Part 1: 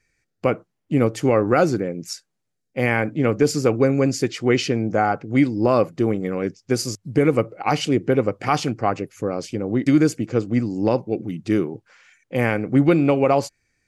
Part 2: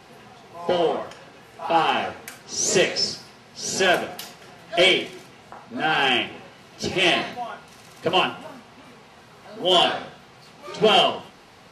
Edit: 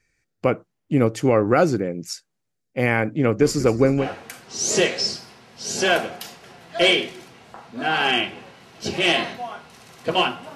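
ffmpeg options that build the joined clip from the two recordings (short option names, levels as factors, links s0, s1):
-filter_complex "[0:a]asplit=3[s0][s1][s2];[s0]afade=t=out:st=3.39:d=0.02[s3];[s1]asplit=5[s4][s5][s6][s7][s8];[s5]adelay=191,afreqshift=-84,volume=0.158[s9];[s6]adelay=382,afreqshift=-168,volume=0.0794[s10];[s7]adelay=573,afreqshift=-252,volume=0.0398[s11];[s8]adelay=764,afreqshift=-336,volume=0.0197[s12];[s4][s9][s10][s11][s12]amix=inputs=5:normalize=0,afade=t=in:st=3.39:d=0.02,afade=t=out:st=4.09:d=0.02[s13];[s2]afade=t=in:st=4.09:d=0.02[s14];[s3][s13][s14]amix=inputs=3:normalize=0,apad=whole_dur=10.55,atrim=end=10.55,atrim=end=4.09,asetpts=PTS-STARTPTS[s15];[1:a]atrim=start=1.95:end=8.53,asetpts=PTS-STARTPTS[s16];[s15][s16]acrossfade=d=0.12:c1=tri:c2=tri"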